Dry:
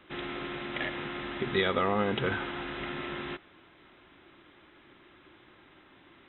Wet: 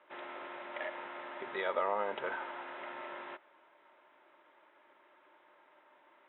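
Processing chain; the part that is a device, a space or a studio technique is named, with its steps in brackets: tin-can telephone (BPF 550–2100 Hz; small resonant body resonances 600/910 Hz, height 12 dB, ringing for 45 ms); gain -5.5 dB

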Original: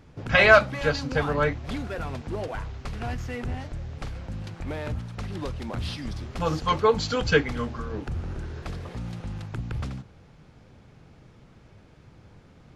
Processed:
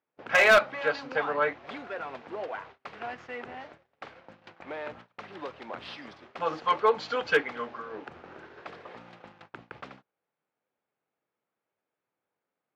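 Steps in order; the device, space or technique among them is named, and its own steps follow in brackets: walkie-talkie (BPF 490–2700 Hz; hard clip -13.5 dBFS, distortion -12 dB; gate -48 dBFS, range -26 dB)

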